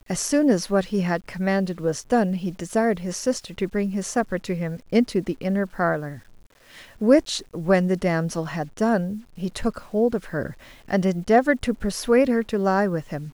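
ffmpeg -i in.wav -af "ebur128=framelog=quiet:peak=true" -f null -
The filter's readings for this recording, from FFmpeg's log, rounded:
Integrated loudness:
  I:         -23.3 LUFS
  Threshold: -33.6 LUFS
Loudness range:
  LRA:         3.0 LU
  Threshold: -44.0 LUFS
  LRA low:   -25.5 LUFS
  LRA high:  -22.6 LUFS
True peak:
  Peak:       -4.0 dBFS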